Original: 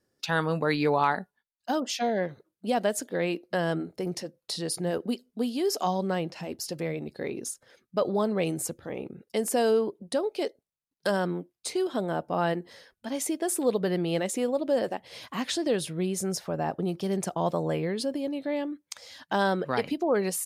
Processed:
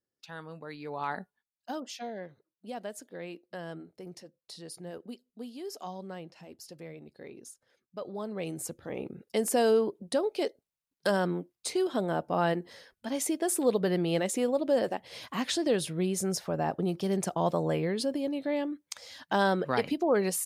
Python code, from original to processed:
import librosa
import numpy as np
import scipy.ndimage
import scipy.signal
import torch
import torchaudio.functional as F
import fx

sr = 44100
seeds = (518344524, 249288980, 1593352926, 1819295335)

y = fx.gain(x, sr, db=fx.line((0.83, -17.0), (1.21, -4.5), (2.24, -13.0), (8.04, -13.0), (9.02, -0.5)))